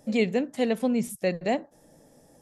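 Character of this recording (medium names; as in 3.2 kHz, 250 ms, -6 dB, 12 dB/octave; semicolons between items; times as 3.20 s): noise floor -60 dBFS; spectral tilt -5.0 dB/octave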